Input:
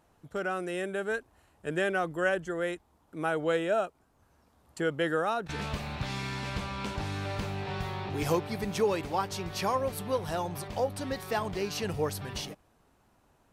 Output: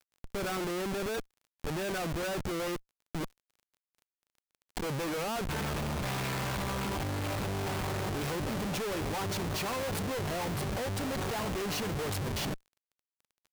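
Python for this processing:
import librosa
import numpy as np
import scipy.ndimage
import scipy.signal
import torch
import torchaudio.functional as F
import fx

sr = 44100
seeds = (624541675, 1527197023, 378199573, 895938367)

y = fx.gate_flip(x, sr, shuts_db=-26.0, range_db=-40, at=(3.23, 4.82), fade=0.02)
y = fx.schmitt(y, sr, flips_db=-40.5)
y = fx.dmg_crackle(y, sr, seeds[0], per_s=24.0, level_db=-50.0)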